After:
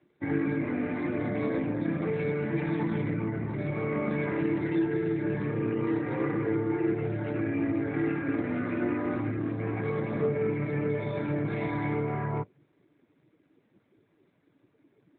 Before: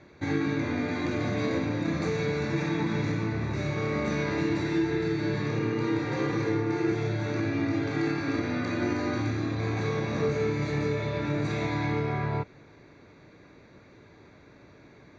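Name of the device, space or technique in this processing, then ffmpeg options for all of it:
mobile call with aggressive noise cancelling: -filter_complex "[0:a]asettb=1/sr,asplit=3[a][b][c];[a]atrim=end=0.724[d];[b]atrim=start=0.72:end=2.3,asetpts=PTS-STARTPTS,afade=t=in:d=0.004:c=qsin,afade=t=out:st=1.576:d=0.004:c=qsin,lowshelf=f=62:g=-2[e];[c]atrim=start=2.296[f];[d][e]acrossfade=d=0.004:c1=hsin:c2=qsin[g];[g][f]acrossfade=d=0.004:c1=qsin:c2=hsin,highpass=110,afftdn=nr=16:nf=-39" -ar 8000 -c:a libopencore_amrnb -b:a 12200

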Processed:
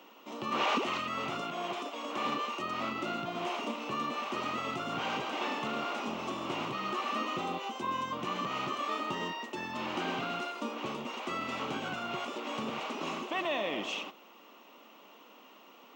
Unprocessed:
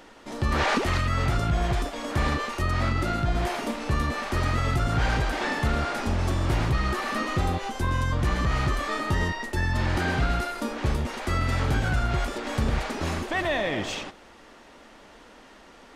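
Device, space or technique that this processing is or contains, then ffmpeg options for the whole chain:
old television with a line whistle: -filter_complex "[0:a]asettb=1/sr,asplit=3[a][b][c];[a]atrim=end=1.404[d];[b]atrim=start=1.4:end=2.25,asetpts=PTS-STARTPTS,afade=t=in:d=0.004:c=qsin,afade=t=out:st=0.846:d=0.004:c=qsin,highpass=230[e];[c]atrim=start=2.246[f];[d][e]acrossfade=d=0.004:c1=hsin:c2=qsin[g];[g][f]acrossfade=d=0.004:c1=qsin:c2=hsin,highpass=f=200:w=0.5412,highpass=f=200:w=1.3066,equalizer=f=1.1k:t=q:w=4:g=7,equalizer=f=1.7k:t=q:w=4:g=-10,equalizer=f=2.8k:t=q:w=4:g=9,equalizer=f=4.7k:t=q:w=4:g=-6,lowpass=f=6.9k:w=0.5412,lowpass=f=6.9k:w=1.3066,aeval=exprs='val(0)+0.00112*sin(2*PI*15734*n/s)':c=same,volume=-6.5dB"

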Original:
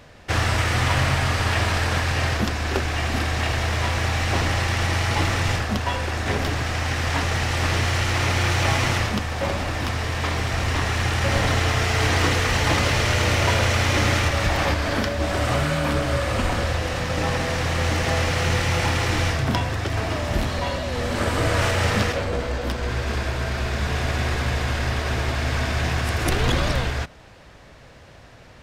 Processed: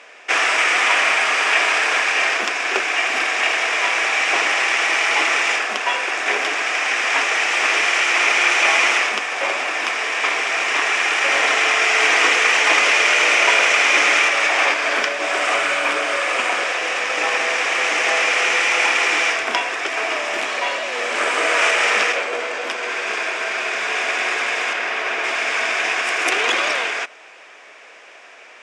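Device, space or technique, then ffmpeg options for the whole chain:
phone speaker on a table: -filter_complex "[0:a]asettb=1/sr,asplit=3[a][b][c];[a]atrim=end=24.734[d];[b]atrim=start=24.73:end=25.24,asetpts=PTS-STARTPTS,afade=t=in:d=0.004:c=qsin,afade=t=out:st=0.506:d=0.004:c=qsin,highshelf=f=5.6k:g=-10.5[e];[c]atrim=start=25.236[f];[d][e]acrossfade=d=0.004:c1=hsin:c2=qsin[g];[g][f]acrossfade=d=0.004:c1=qsin:c2=hsin,highpass=f=440:w=0.5412,highpass=f=440:w=1.3066,equalizer=f=540:t=q:w=4:g=-7,equalizer=f=870:t=q:w=4:g=-4,equalizer=f=2.4k:t=q:w=4:g=8,equalizer=f=4.2k:t=q:w=4:g=-9,lowpass=f=8.6k:w=0.5412,lowpass=f=8.6k:w=1.3066,volume=7dB"

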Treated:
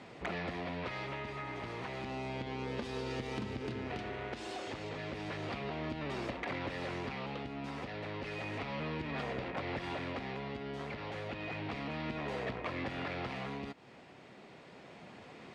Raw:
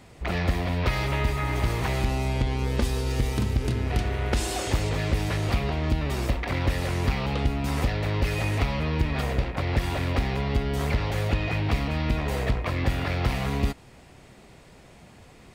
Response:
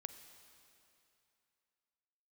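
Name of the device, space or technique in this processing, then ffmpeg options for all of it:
AM radio: -af "highpass=190,lowpass=4k,acompressor=threshold=-36dB:ratio=6,asoftclip=type=tanh:threshold=-27dB,tremolo=f=0.32:d=0.36,volume=1.5dB"

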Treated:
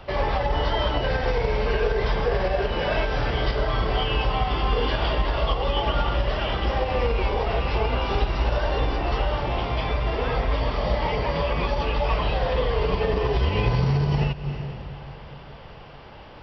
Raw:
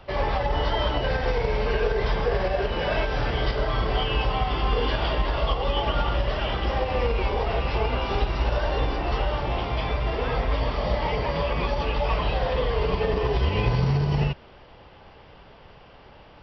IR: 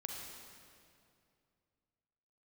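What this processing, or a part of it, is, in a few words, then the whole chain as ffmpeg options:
ducked reverb: -filter_complex "[0:a]asplit=3[a][b][c];[1:a]atrim=start_sample=2205[d];[b][d]afir=irnorm=-1:irlink=0[e];[c]apad=whole_len=724227[f];[e][f]sidechaincompress=threshold=-39dB:ratio=8:attack=48:release=174,volume=0.5dB[g];[a][g]amix=inputs=2:normalize=0"

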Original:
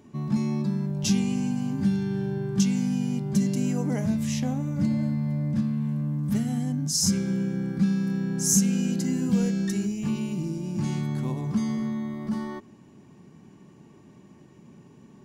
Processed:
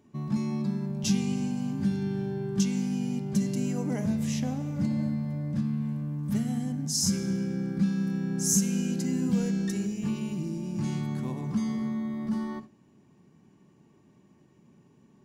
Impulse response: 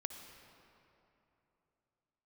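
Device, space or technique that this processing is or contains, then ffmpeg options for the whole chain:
keyed gated reverb: -filter_complex "[0:a]asplit=3[a][b][c];[1:a]atrim=start_sample=2205[d];[b][d]afir=irnorm=-1:irlink=0[e];[c]apad=whole_len=672524[f];[e][f]sidechaingate=range=-33dB:threshold=-42dB:ratio=16:detection=peak,volume=1.5dB[g];[a][g]amix=inputs=2:normalize=0,volume=-8.5dB"

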